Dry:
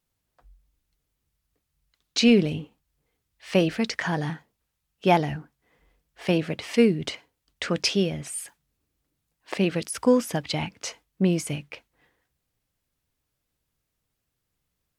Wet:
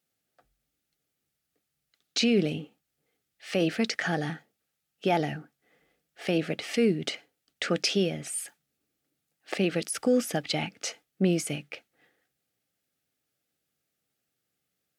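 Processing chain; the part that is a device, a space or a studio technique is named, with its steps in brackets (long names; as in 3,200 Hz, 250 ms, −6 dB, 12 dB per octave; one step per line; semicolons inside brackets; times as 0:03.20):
PA system with an anti-feedback notch (high-pass filter 180 Hz 12 dB per octave; Butterworth band-reject 1,000 Hz, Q 3.7; brickwall limiter −15 dBFS, peak gain reduction 7 dB)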